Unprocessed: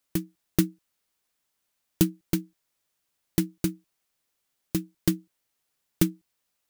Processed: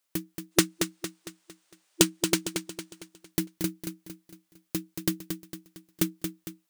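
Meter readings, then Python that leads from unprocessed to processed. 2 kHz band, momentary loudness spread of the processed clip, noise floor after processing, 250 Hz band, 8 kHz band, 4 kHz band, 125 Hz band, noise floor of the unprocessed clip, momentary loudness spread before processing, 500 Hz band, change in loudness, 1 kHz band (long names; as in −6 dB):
+7.5 dB, 21 LU, −77 dBFS, −2.5 dB, +7.0 dB, +8.0 dB, −6.0 dB, −79 dBFS, 6 LU, +3.0 dB, −0.5 dB, +7.5 dB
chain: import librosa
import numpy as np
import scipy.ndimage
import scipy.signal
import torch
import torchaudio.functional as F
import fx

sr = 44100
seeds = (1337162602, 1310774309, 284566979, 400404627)

p1 = fx.spec_box(x, sr, start_s=0.52, length_s=2.56, low_hz=340.0, high_hz=10000.0, gain_db=10)
p2 = fx.low_shelf(p1, sr, hz=240.0, db=-10.5)
y = p2 + fx.echo_feedback(p2, sr, ms=228, feedback_pct=44, wet_db=-7.0, dry=0)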